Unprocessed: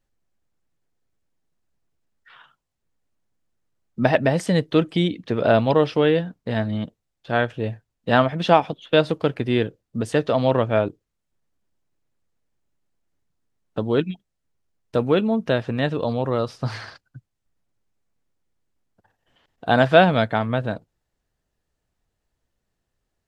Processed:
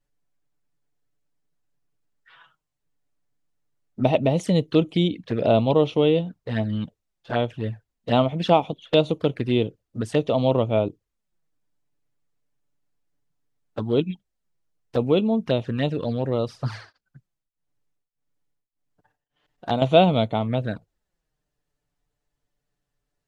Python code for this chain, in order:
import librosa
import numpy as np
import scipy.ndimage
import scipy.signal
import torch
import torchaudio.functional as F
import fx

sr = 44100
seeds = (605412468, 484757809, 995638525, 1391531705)

y = fx.env_flanger(x, sr, rest_ms=6.9, full_db=-18.0)
y = fx.tremolo_abs(y, sr, hz=1.7, at=(16.64, 19.82))